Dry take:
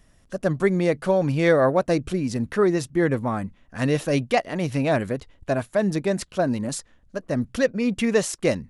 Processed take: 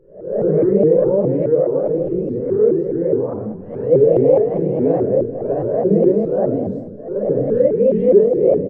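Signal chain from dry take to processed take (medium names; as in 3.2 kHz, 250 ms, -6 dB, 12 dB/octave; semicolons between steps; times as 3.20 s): reverse spectral sustain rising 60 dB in 0.56 s; tilt EQ +2 dB/octave; peak limiter -15.5 dBFS, peak gain reduction 10 dB; 1.32–3.91 s: compression 1.5:1, threshold -34 dBFS, peak gain reduction 5 dB; resonant low-pass 450 Hz, resonance Q 4.9; feedback delay 229 ms, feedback 44%, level -18 dB; simulated room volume 840 m³, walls furnished, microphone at 4.8 m; vibrato with a chosen wave saw up 4.8 Hz, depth 250 cents; trim -2.5 dB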